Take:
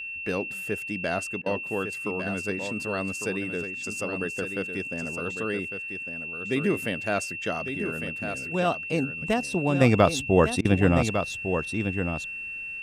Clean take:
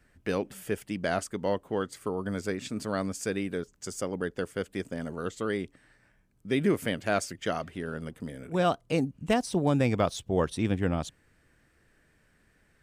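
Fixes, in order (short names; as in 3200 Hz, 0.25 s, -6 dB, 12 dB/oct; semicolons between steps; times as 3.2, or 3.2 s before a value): notch 2700 Hz, Q 30; interpolate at 1.42/10.61, 39 ms; inverse comb 1.153 s -8 dB; gain correction -7 dB, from 9.81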